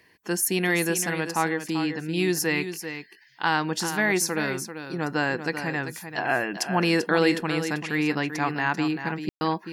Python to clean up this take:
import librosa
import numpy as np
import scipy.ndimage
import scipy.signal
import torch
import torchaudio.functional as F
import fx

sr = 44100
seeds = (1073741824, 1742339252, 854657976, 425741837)

y = fx.fix_ambience(x, sr, seeds[0], print_start_s=2.93, print_end_s=3.43, start_s=9.29, end_s=9.41)
y = fx.fix_echo_inverse(y, sr, delay_ms=390, level_db=-9.5)